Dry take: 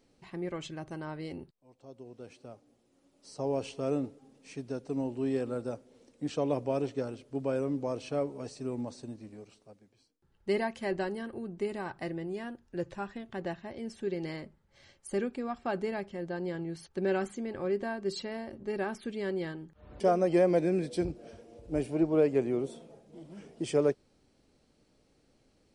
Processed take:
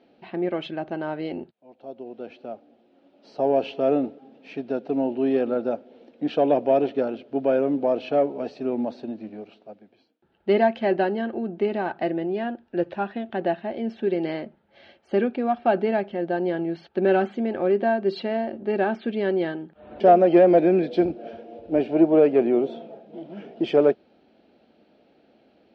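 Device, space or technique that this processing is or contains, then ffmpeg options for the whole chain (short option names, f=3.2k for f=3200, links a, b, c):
overdrive pedal into a guitar cabinet: -filter_complex "[0:a]asplit=2[a][b];[b]highpass=f=720:p=1,volume=12dB,asoftclip=type=tanh:threshold=-14.5dB[c];[a][c]amix=inputs=2:normalize=0,lowpass=f=2.9k:p=1,volume=-6dB,highpass=88,equalizer=f=120:t=q:w=4:g=-8,equalizer=f=220:t=q:w=4:g=7,equalizer=f=340:t=q:w=4:g=4,equalizer=f=680:t=q:w=4:g=7,equalizer=f=1.1k:t=q:w=4:g=-9,equalizer=f=2k:t=q:w=4:g=-6,lowpass=f=3.6k:w=0.5412,lowpass=f=3.6k:w=1.3066,volume=6dB"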